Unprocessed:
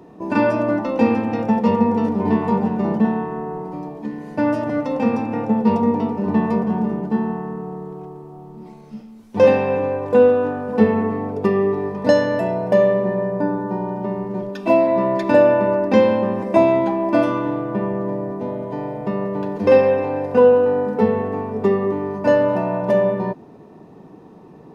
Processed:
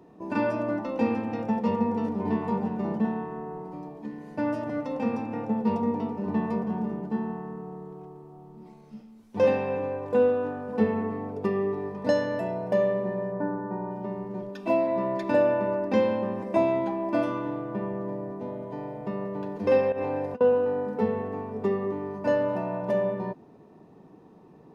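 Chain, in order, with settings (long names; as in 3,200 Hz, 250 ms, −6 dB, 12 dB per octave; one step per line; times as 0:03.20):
0:13.32–0:13.91: high shelf with overshoot 2,500 Hz −11 dB, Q 1.5
0:19.92–0:20.41: compressor whose output falls as the input rises −21 dBFS, ratio −0.5
level −9 dB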